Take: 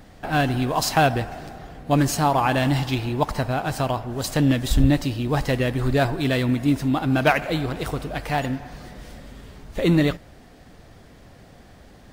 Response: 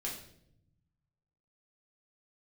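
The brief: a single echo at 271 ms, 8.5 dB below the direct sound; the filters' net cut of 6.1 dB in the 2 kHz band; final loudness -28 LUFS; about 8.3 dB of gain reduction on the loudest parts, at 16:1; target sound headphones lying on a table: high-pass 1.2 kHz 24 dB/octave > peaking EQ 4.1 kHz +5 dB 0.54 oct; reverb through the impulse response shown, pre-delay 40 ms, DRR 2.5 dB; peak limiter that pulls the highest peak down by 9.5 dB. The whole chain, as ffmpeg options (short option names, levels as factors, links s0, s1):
-filter_complex "[0:a]equalizer=f=2000:t=o:g=-8.5,acompressor=threshold=0.1:ratio=16,alimiter=limit=0.1:level=0:latency=1,aecho=1:1:271:0.376,asplit=2[s0][s1];[1:a]atrim=start_sample=2205,adelay=40[s2];[s1][s2]afir=irnorm=-1:irlink=0,volume=0.668[s3];[s0][s3]amix=inputs=2:normalize=0,highpass=f=1200:w=0.5412,highpass=f=1200:w=1.3066,equalizer=f=4100:t=o:w=0.54:g=5,volume=2.24"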